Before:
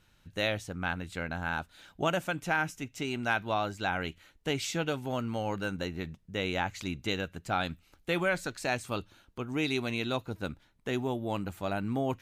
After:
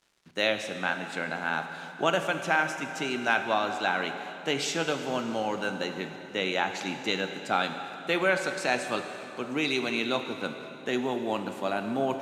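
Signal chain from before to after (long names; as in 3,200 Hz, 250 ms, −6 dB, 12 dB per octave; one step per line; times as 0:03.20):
Bessel high-pass filter 240 Hz, order 8
high-shelf EQ 5,800 Hz +6.5 dB
bit reduction 10 bits
high-frequency loss of the air 57 metres
dense smooth reverb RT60 3.2 s, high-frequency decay 0.8×, DRR 6 dB
level +4 dB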